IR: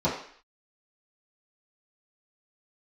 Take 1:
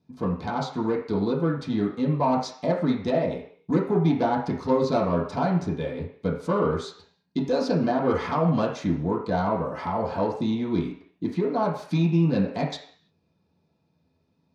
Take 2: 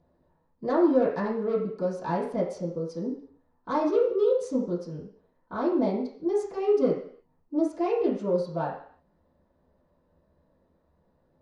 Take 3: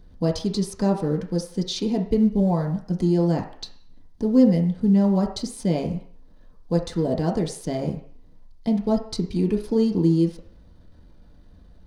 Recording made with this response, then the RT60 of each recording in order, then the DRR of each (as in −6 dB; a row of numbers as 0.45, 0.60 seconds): 2; 0.55, 0.55, 0.55 seconds; −6.5, −11.5, 0.0 decibels